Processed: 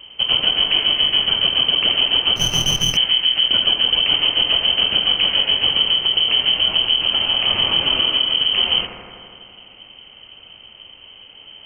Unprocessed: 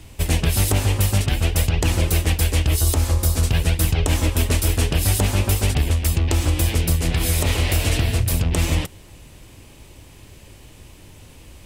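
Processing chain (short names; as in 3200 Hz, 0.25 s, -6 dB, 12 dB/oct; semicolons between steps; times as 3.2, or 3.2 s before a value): thinning echo 83 ms, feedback 80%, high-pass 490 Hz, level -7 dB; inverted band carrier 3100 Hz; 2.36–2.97 running maximum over 5 samples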